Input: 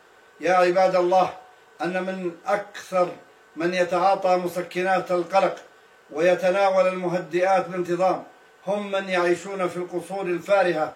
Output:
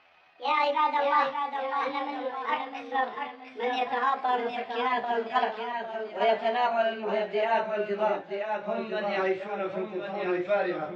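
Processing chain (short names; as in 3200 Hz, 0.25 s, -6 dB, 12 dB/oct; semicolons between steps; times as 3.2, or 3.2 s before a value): gliding pitch shift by +9 st ending unshifted; echoes that change speed 0.538 s, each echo -1 st, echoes 3, each echo -6 dB; LPF 4000 Hz 24 dB/oct; gain -5.5 dB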